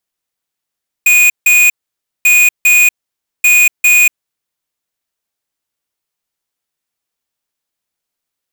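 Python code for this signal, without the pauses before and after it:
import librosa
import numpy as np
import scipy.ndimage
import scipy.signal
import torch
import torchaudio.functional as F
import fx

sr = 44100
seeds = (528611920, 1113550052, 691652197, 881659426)

y = fx.beep_pattern(sr, wave='square', hz=2470.0, on_s=0.24, off_s=0.16, beeps=2, pause_s=0.55, groups=3, level_db=-7.5)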